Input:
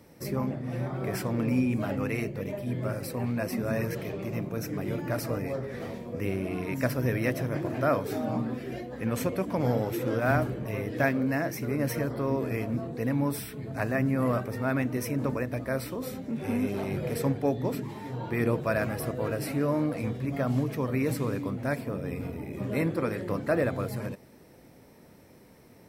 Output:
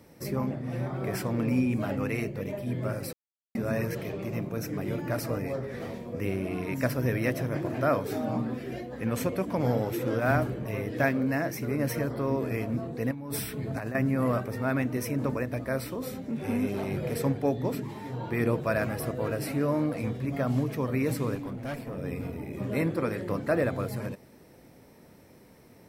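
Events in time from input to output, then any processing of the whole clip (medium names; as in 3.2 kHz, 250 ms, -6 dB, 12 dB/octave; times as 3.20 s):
3.13–3.55 s: mute
13.11–13.95 s: compressor with a negative ratio -34 dBFS
21.35–21.98 s: valve stage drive 30 dB, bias 0.45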